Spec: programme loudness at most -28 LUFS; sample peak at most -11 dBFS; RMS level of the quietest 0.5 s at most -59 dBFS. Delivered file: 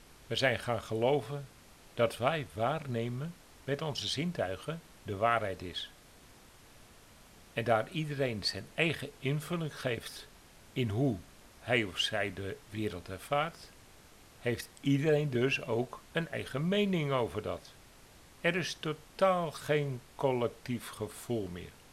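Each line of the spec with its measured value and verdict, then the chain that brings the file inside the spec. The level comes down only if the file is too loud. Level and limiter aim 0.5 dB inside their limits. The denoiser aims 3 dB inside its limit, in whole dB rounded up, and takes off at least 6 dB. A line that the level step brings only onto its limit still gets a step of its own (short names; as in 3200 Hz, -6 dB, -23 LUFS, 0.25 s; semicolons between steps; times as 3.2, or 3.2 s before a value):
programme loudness -33.5 LUFS: OK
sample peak -12.0 dBFS: OK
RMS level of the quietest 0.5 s -57 dBFS: fail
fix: denoiser 6 dB, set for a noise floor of -57 dBFS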